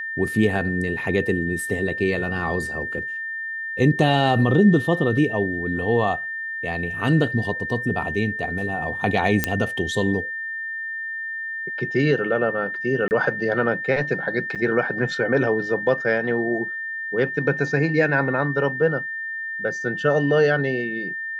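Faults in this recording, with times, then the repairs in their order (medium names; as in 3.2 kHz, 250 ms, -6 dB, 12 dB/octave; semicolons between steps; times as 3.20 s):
whine 1.8 kHz -27 dBFS
9.44 s: pop -3 dBFS
13.08–13.11 s: dropout 29 ms
14.55–14.56 s: dropout 7 ms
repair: de-click; band-stop 1.8 kHz, Q 30; interpolate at 13.08 s, 29 ms; interpolate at 14.55 s, 7 ms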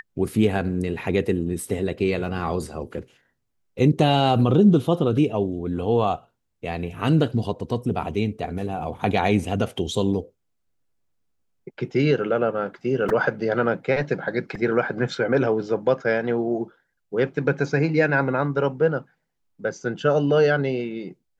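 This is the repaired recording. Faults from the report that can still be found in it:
nothing left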